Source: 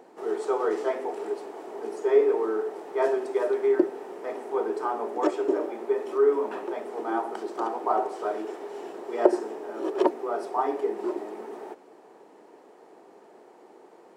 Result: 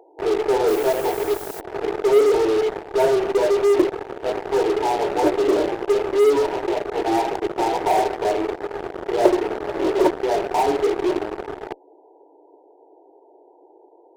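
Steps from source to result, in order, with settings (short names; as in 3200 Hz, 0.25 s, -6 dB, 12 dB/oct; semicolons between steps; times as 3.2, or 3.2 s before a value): FFT band-pass 270–1000 Hz; in parallel at -8.5 dB: fuzz box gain 36 dB, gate -36 dBFS; 0.67–1.59 on the sum: added noise blue -39 dBFS; gain +1 dB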